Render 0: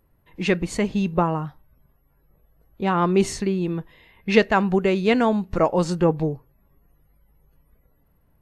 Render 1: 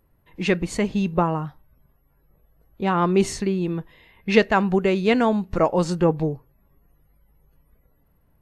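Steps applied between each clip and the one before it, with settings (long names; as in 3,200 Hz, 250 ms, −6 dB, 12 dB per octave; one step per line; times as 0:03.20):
no processing that can be heard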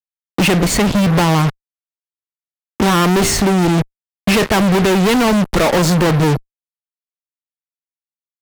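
fuzz pedal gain 40 dB, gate −40 dBFS
multiband upward and downward compressor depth 40%
level +1.5 dB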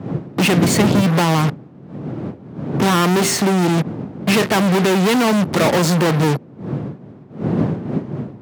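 wind on the microphone 190 Hz −19 dBFS
high-pass filter 130 Hz 24 dB per octave
level −2 dB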